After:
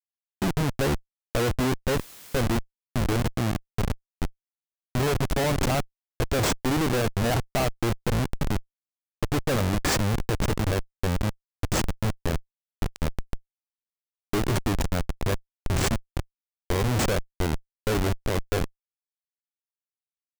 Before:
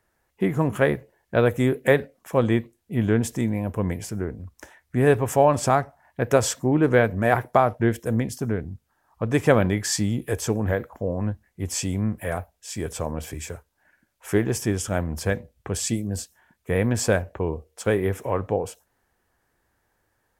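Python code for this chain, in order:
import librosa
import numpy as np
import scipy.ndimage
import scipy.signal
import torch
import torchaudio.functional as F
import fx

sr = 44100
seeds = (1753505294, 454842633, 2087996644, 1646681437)

y = fx.schmitt(x, sr, flips_db=-23.0)
y = fx.quant_dither(y, sr, seeds[0], bits=8, dither='triangular', at=(1.97, 2.42))
y = y * librosa.db_to_amplitude(1.5)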